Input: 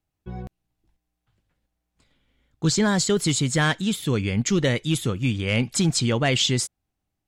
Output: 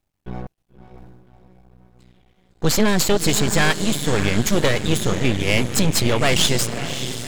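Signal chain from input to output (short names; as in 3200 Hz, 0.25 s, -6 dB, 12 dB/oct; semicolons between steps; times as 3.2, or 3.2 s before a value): diffused feedback echo 0.578 s, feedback 50%, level -10 dB; half-wave rectifier; gain +8 dB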